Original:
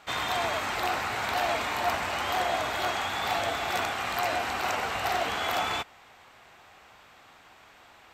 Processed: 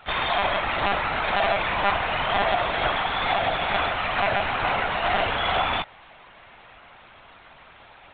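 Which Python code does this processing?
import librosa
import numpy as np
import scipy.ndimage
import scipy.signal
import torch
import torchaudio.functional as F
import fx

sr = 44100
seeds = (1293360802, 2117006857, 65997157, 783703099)

y = fx.lpc_monotone(x, sr, seeds[0], pitch_hz=200.0, order=16)
y = y * librosa.db_to_amplitude(5.5)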